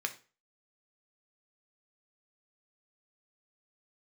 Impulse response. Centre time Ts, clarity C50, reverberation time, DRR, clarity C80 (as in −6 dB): 7 ms, 14.5 dB, 0.35 s, 5.5 dB, 19.5 dB